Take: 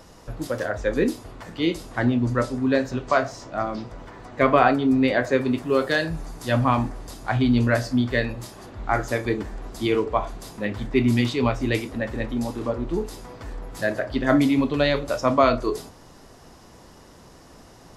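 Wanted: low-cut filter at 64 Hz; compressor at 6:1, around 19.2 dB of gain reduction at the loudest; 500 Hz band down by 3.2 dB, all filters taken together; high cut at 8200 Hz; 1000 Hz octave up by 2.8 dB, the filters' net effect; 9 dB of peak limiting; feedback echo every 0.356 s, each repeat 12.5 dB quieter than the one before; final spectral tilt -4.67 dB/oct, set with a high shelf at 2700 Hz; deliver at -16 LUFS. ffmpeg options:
-af "highpass=64,lowpass=8.2k,equalizer=f=500:t=o:g=-6,equalizer=f=1k:t=o:g=4.5,highshelf=f=2.7k:g=7,acompressor=threshold=-33dB:ratio=6,alimiter=level_in=1.5dB:limit=-24dB:level=0:latency=1,volume=-1.5dB,aecho=1:1:356|712|1068:0.237|0.0569|0.0137,volume=22dB"

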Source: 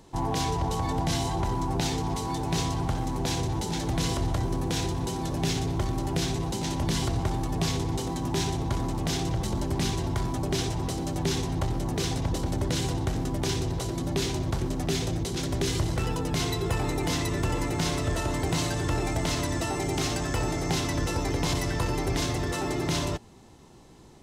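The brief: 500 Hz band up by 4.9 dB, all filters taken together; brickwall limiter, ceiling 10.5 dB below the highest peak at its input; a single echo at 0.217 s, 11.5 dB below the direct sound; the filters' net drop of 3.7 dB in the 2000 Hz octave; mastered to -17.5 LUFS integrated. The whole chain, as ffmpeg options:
-af "equalizer=f=500:t=o:g=7,equalizer=f=2k:t=o:g=-5,alimiter=limit=-23dB:level=0:latency=1,aecho=1:1:217:0.266,volume=13.5dB"

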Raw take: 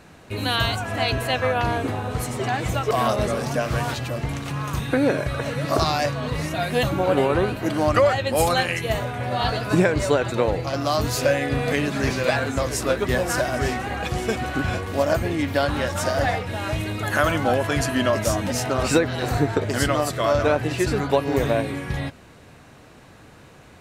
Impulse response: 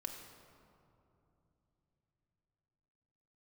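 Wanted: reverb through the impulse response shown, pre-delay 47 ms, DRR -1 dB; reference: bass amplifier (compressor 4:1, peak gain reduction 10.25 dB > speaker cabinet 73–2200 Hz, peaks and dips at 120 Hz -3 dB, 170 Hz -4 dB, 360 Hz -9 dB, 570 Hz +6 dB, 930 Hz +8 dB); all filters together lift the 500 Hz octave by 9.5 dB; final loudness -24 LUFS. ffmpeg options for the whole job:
-filter_complex "[0:a]equalizer=f=500:t=o:g=7,asplit=2[a][b];[1:a]atrim=start_sample=2205,adelay=47[c];[b][c]afir=irnorm=-1:irlink=0,volume=3dB[d];[a][d]amix=inputs=2:normalize=0,acompressor=threshold=-14dB:ratio=4,highpass=f=73:w=0.5412,highpass=f=73:w=1.3066,equalizer=f=120:t=q:w=4:g=-3,equalizer=f=170:t=q:w=4:g=-4,equalizer=f=360:t=q:w=4:g=-9,equalizer=f=570:t=q:w=4:g=6,equalizer=f=930:t=q:w=4:g=8,lowpass=f=2.2k:w=0.5412,lowpass=f=2.2k:w=1.3066,volume=-7.5dB"

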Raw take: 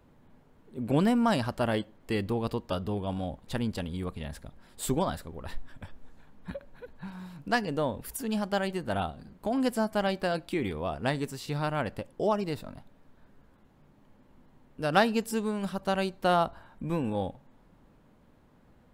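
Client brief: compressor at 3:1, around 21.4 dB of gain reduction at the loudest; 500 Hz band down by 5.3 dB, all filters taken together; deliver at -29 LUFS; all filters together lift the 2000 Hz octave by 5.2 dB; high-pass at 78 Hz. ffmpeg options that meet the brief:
-af "highpass=78,equalizer=f=500:t=o:g=-7.5,equalizer=f=2k:t=o:g=7.5,acompressor=threshold=-48dB:ratio=3,volume=18.5dB"

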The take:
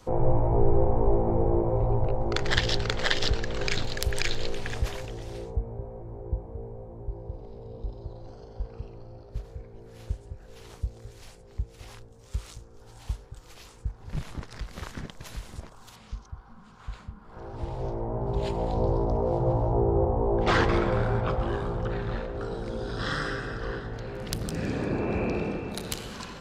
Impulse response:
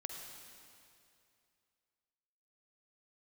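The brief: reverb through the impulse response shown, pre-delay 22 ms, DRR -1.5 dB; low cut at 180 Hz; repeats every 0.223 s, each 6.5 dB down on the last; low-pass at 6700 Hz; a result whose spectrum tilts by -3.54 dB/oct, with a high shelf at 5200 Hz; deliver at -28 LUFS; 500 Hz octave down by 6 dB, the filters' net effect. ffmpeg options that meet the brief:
-filter_complex "[0:a]highpass=180,lowpass=6.7k,equalizer=f=500:t=o:g=-7.5,highshelf=f=5.2k:g=-8.5,aecho=1:1:223|446|669|892|1115|1338:0.473|0.222|0.105|0.0491|0.0231|0.0109,asplit=2[a][b];[1:a]atrim=start_sample=2205,adelay=22[c];[b][c]afir=irnorm=-1:irlink=0,volume=3dB[d];[a][d]amix=inputs=2:normalize=0,volume=1dB"

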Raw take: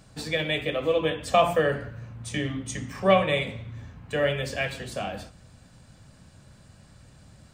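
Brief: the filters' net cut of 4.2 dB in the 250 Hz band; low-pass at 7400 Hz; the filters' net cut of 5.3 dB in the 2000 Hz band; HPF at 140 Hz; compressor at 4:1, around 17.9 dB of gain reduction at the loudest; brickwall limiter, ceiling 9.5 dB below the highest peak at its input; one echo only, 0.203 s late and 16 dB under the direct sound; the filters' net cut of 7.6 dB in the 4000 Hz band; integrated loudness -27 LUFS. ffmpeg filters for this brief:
-af "highpass=140,lowpass=7.4k,equalizer=f=250:t=o:g=-5,equalizer=f=2k:t=o:g=-4,equalizer=f=4k:t=o:g=-8.5,acompressor=threshold=-38dB:ratio=4,alimiter=level_in=8dB:limit=-24dB:level=0:latency=1,volume=-8dB,aecho=1:1:203:0.158,volume=16dB"

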